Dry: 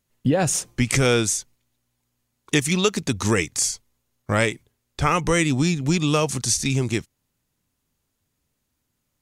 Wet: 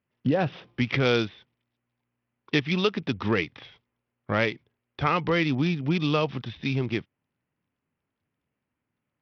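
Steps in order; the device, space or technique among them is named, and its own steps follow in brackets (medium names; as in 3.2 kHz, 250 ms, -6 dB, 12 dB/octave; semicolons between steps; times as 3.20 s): Bluetooth headset (high-pass 110 Hz 12 dB/octave; resampled via 8 kHz; trim -3.5 dB; SBC 64 kbps 44.1 kHz)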